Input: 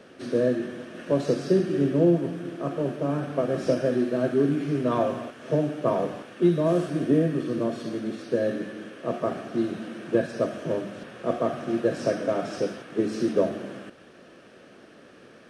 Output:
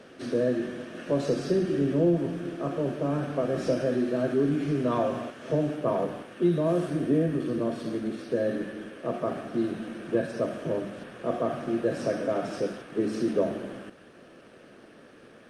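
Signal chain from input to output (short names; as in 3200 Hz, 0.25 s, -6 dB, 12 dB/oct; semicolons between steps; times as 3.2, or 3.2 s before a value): de-hum 185.5 Hz, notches 10; in parallel at -0.5 dB: limiter -21.5 dBFS, peak gain reduction 12 dB; on the sum: gain -5.5 dB; Opus 48 kbps 48000 Hz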